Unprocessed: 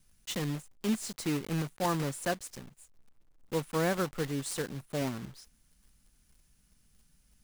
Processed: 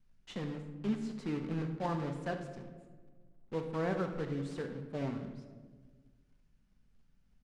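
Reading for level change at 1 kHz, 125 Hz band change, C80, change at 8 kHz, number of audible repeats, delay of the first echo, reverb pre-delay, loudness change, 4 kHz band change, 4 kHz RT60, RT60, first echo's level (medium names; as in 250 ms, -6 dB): -5.0 dB, -3.0 dB, 10.0 dB, -21.0 dB, 1, 72 ms, 4 ms, -4.5 dB, -12.0 dB, 0.85 s, 1.5 s, -13.0 dB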